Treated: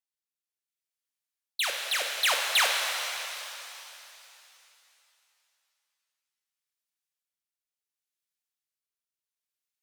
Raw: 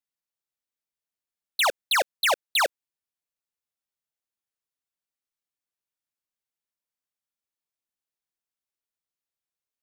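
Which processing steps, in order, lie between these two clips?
tilt shelf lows -7.5 dB, about 830 Hz; rotary speaker horn 0.7 Hz; shimmer reverb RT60 3 s, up +7 st, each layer -8 dB, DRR 0.5 dB; gain -6.5 dB

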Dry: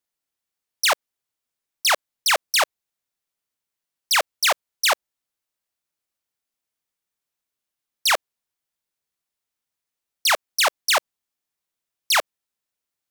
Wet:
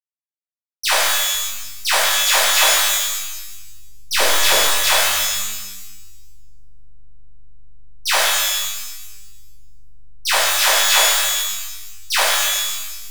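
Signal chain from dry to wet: backlash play -28.5 dBFS; 4.12–4.9 resonant low shelf 550 Hz +9.5 dB, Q 1.5; shimmer reverb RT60 1.1 s, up +12 st, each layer -2 dB, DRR -10.5 dB; gain -7.5 dB

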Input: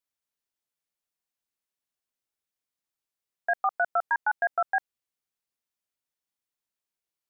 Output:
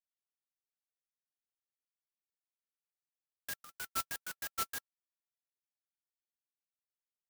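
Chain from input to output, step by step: rippled Chebyshev high-pass 1300 Hz, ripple 9 dB; air absorption 430 m; clock jitter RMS 0.11 ms; gain -2.5 dB

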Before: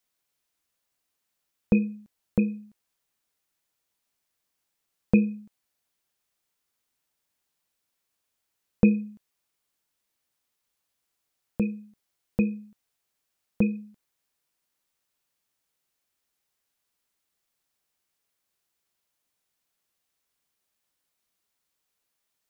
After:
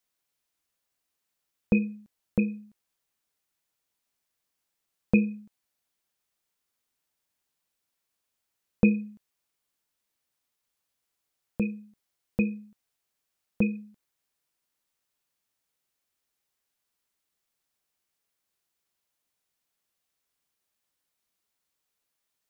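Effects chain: dynamic EQ 1900 Hz, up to +8 dB, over -50 dBFS, Q 1.3; gain -2 dB

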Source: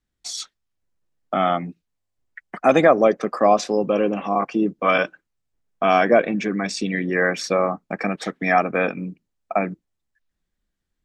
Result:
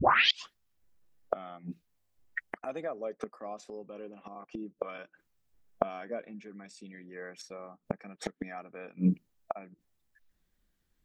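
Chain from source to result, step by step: tape start at the beginning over 0.52 s; flipped gate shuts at -19 dBFS, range -28 dB; spectral noise reduction 6 dB; gain +8.5 dB

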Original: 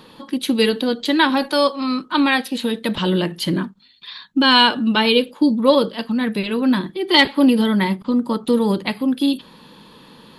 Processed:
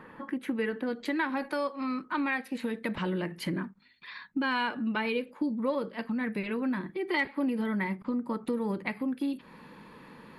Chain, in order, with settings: resonant high shelf 2700 Hz -13.5 dB, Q 3, from 0.87 s -6.5 dB; compressor 2.5:1, threshold -27 dBFS, peak gain reduction 13.5 dB; gain -5 dB

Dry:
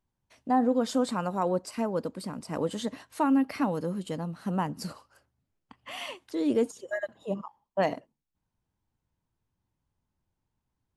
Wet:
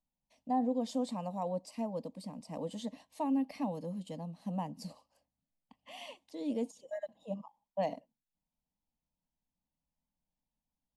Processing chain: high shelf 7800 Hz -8 dB; fixed phaser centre 380 Hz, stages 6; gain -6 dB

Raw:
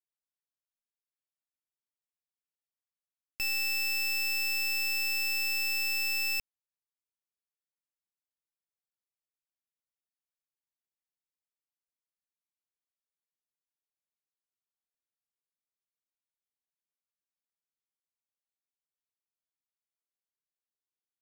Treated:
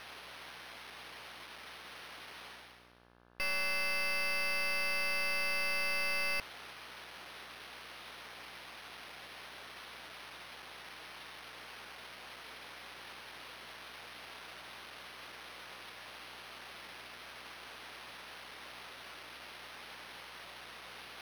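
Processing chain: reverse; upward compressor, threshold -43 dBFS; reverse; careless resampling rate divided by 6×, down none, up hold; overdrive pedal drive 29 dB, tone 4300 Hz, clips at -27.5 dBFS; buzz 60 Hz, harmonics 29, -61 dBFS -2 dB/oct; gain -3 dB

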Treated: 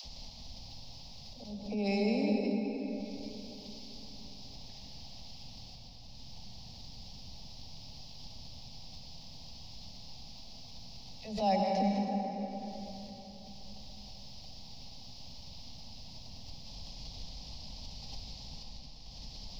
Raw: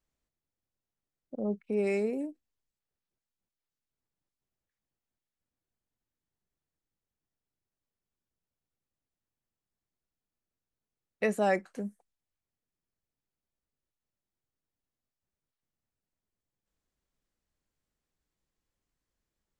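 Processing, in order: dispersion lows, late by 52 ms, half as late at 400 Hz; upward compressor, threshold -29 dBFS; EQ curve 240 Hz 0 dB, 350 Hz -16 dB, 810 Hz 0 dB, 1500 Hz -29 dB, 2600 Hz -6 dB, 5100 Hz +9 dB, 8100 Hz -26 dB; auto swell 0.473 s; bell 220 Hz -4 dB 2.9 oct; reverb RT60 3.9 s, pre-delay 88 ms, DRR -1.5 dB; backwards sustainer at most 83 dB/s; gain +7.5 dB

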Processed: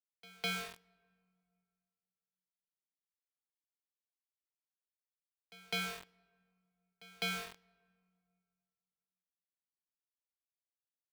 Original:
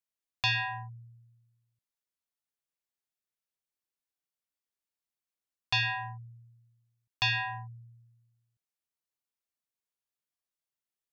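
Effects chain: frequency shift -300 Hz; sample gate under -30.5 dBFS; pre-echo 0.205 s -21 dB; on a send at -24 dB: reverb RT60 2.2 s, pre-delay 3 ms; on the sum: gain -8.5 dB

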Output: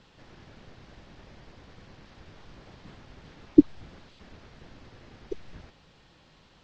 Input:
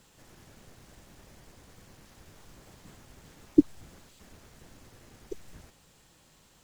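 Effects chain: LPF 4700 Hz 24 dB/oct; gain +4 dB

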